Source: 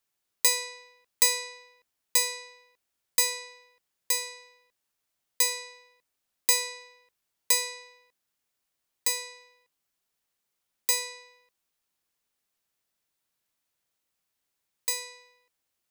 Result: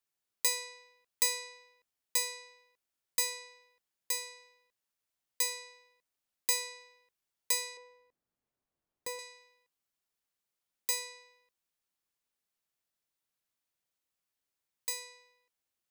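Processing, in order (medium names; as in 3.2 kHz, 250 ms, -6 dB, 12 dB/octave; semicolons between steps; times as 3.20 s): 7.77–9.19 s: tilt shelf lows +9.5 dB, about 1.4 kHz; trim -7 dB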